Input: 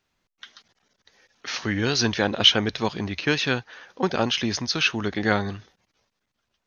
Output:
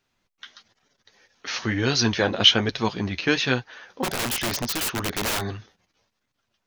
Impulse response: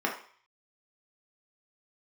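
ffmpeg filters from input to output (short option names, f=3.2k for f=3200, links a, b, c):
-filter_complex "[0:a]flanger=delay=6.8:depth=5.3:regen=-34:speed=1.1:shape=triangular,asplit=3[a][b][c];[a]afade=t=out:st=4.03:d=0.02[d];[b]aeval=exprs='(mod(17.8*val(0)+1,2)-1)/17.8':c=same,afade=t=in:st=4.03:d=0.02,afade=t=out:st=5.4:d=0.02[e];[c]afade=t=in:st=5.4:d=0.02[f];[d][e][f]amix=inputs=3:normalize=0,volume=4.5dB"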